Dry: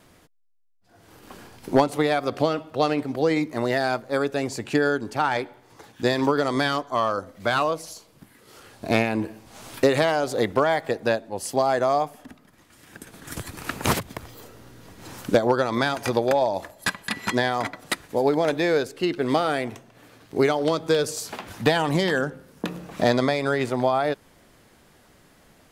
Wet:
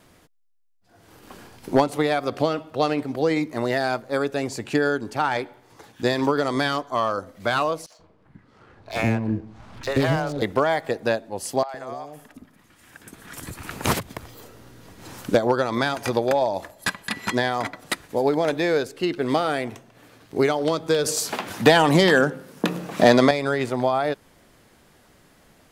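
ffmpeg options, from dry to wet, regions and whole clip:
ffmpeg -i in.wav -filter_complex "[0:a]asettb=1/sr,asplit=3[link_01][link_02][link_03];[link_01]atrim=end=7.864[link_04];[link_02]atrim=start=7.86:end=10.42,asetpts=PTS-STARTPTS,afade=type=in:duration=0.004:curve=qsin,afade=type=out:start_time=2.556:duration=0.004:curve=qsin,acrossover=split=510|3000[link_05][link_06][link_07];[link_06]adelay=40[link_08];[link_05]adelay=130[link_09];[link_09][link_08][link_07]amix=inputs=3:normalize=0,atrim=end_sample=112896,asubboost=boost=4:cutoff=220,adynamicsmooth=sensitivity=7.5:basefreq=1900[link_10];[link_03]atrim=start=10.416[link_11];[link_04][link_10]acrossfade=duration=0.004:curve1=hsin:curve2=qsin[link_12];[link_12][link_11]acrossfade=duration=0.004:curve1=qsin:curve2=hsin,asettb=1/sr,asplit=3[link_13][link_14][link_15];[link_13]atrim=end=11.634[link_16];[link_14]atrim=start=11.63:end=13.71,asetpts=PTS-STARTPTS,afade=type=in:duration=0.004:curve=qsin,afade=type=out:start_time=2.076:duration=0.004:curve=qsin,acompressor=threshold=-27dB:ratio=12:attack=3.2:release=140:knee=1:detection=peak,acrossover=split=560|4600[link_17][link_18][link_19];[link_19]adelay=60[link_20];[link_17]adelay=110[link_21];[link_21][link_18][link_20]amix=inputs=3:normalize=0,atrim=end_sample=91728[link_22];[link_15]atrim=start=13.706[link_23];[link_16][link_22]acrossfade=duration=0.004:curve1=hsin:curve2=qsin[link_24];[link_24][link_23]acrossfade=duration=0.004:curve1=qsin:curve2=hsin,asettb=1/sr,asplit=3[link_25][link_26][link_27];[link_25]atrim=end=21.054[link_28];[link_26]atrim=start=21.05:end=23.31,asetpts=PTS-STARTPTS,afade=type=in:duration=0.004:curve=qsin,afade=type=out:start_time=2.256:duration=0.004:curve=qsin,highpass=140,acontrast=75[link_29];[link_27]atrim=start=23.306[link_30];[link_28][link_29]acrossfade=duration=0.004:curve1=hsin:curve2=qsin[link_31];[link_31][link_30]acrossfade=duration=0.004:curve1=qsin:curve2=hsin" out.wav

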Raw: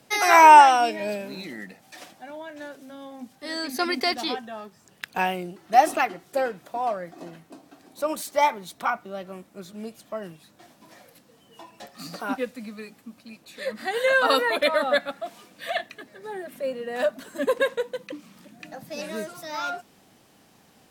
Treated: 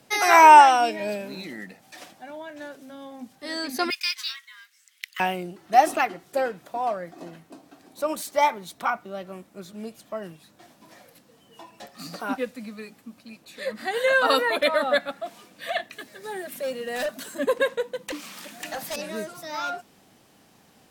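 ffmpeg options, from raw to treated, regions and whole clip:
ffmpeg -i in.wav -filter_complex "[0:a]asettb=1/sr,asplit=3[link_01][link_02][link_03];[link_01]atrim=end=3.904[link_04];[link_02]atrim=start=3.9:end=5.2,asetpts=PTS-STARTPTS,afade=type=in:duration=0.004:curve=qsin,afade=type=out:start_time=1.296:duration=0.004:curve=qsin,highpass=frequency=1400:width=0.5412,highpass=frequency=1400:width=1.3066,afreqshift=350,acrusher=bits=5:mode=log:mix=0:aa=0.000001[link_05];[link_03]atrim=start=5.196[link_06];[link_04][link_05]acrossfade=duration=0.004:curve1=hsin:curve2=qsin[link_07];[link_07][link_06]acrossfade=duration=0.004:curve1=qsin:curve2=hsin,asettb=1/sr,asplit=3[link_08][link_09][link_10];[link_08]atrim=end=15.924[link_11];[link_09]atrim=start=15.92:end=17.35,asetpts=PTS-STARTPTS,afade=type=in:duration=0.004:curve=qsin,afade=type=out:start_time=1.426:duration=0.004:curve=qsin,highshelf=frequency=2600:gain=11,asoftclip=type=hard:threshold=-24.5dB[link_12];[link_10]atrim=start=17.346[link_13];[link_11][link_12]acrossfade=duration=0.004:curve1=hsin:curve2=qsin[link_14];[link_14][link_13]acrossfade=duration=0.004:curve1=qsin:curve2=hsin,asettb=1/sr,asplit=3[link_15][link_16][link_17];[link_15]atrim=end=18.084[link_18];[link_16]atrim=start=18.08:end=18.96,asetpts=PTS-STARTPTS,afade=type=in:duration=0.004:curve=qsin,afade=type=out:start_time=0.876:duration=0.004:curve=qsin,highpass=frequency=1300:poles=1,aeval=exprs='0.0473*sin(PI/2*3.98*val(0)/0.0473)':channel_layout=same[link_19];[link_17]atrim=start=18.956[link_20];[link_18][link_19]acrossfade=duration=0.004:curve1=hsin:curve2=qsin[link_21];[link_21][link_20]acrossfade=duration=0.004:curve1=qsin:curve2=hsin" out.wav

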